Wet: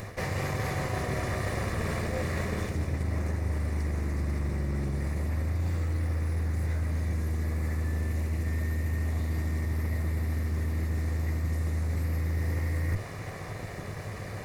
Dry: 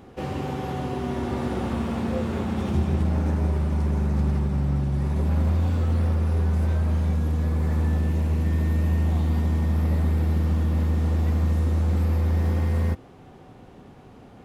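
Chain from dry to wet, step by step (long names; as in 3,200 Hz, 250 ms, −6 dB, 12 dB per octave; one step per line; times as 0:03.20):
lower of the sound and its delayed copy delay 1.7 ms
thirty-one-band graphic EQ 100 Hz +11 dB, 160 Hz +4 dB, 315 Hz +4 dB, 2,000 Hz +12 dB, 3,150 Hz −10 dB
reversed playback
downward compressor 6 to 1, threshold −36 dBFS, peak gain reduction 19 dB
reversed playback
high-shelf EQ 3,100 Hz +12 dB
level +7.5 dB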